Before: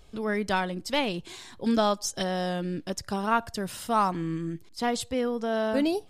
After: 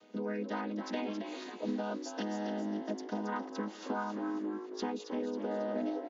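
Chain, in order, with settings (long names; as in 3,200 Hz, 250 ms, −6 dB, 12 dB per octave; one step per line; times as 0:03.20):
channel vocoder with a chord as carrier minor triad, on G#3
low-shelf EQ 200 Hz −9.5 dB
downward compressor 4 to 1, threshold −43 dBFS, peak gain reduction 17 dB
echo with shifted repeats 272 ms, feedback 46%, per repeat +55 Hz, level −8 dB
level +7 dB
WMA 128 kbit/s 16,000 Hz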